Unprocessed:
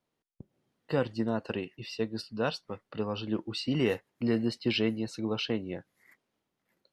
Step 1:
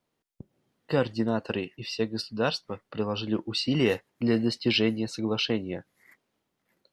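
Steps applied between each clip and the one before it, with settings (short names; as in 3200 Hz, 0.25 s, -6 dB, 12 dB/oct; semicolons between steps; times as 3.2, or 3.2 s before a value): dynamic EQ 4700 Hz, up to +4 dB, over -48 dBFS, Q 0.92; gain +3.5 dB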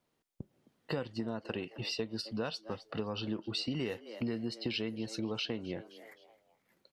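frequency-shifting echo 0.261 s, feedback 40%, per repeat +110 Hz, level -22 dB; compressor 6:1, threshold -33 dBFS, peak gain reduction 14 dB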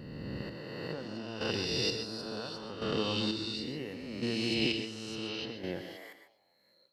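spectral swells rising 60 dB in 2.27 s; chopper 0.71 Hz, depth 60%, duty 35%; reverb, pre-delay 0.108 s, DRR 8 dB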